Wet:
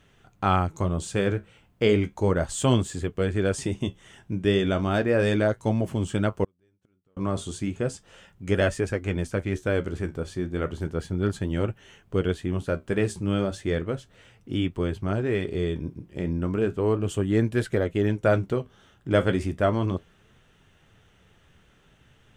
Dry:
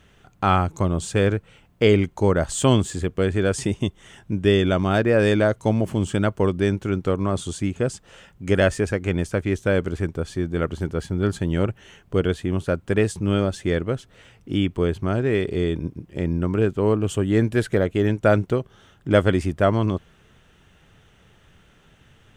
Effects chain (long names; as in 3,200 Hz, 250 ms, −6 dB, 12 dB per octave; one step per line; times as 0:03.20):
flanger 0.34 Hz, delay 7 ms, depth 9.9 ms, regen −57%
0:06.44–0:07.17: gate with flip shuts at −25 dBFS, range −42 dB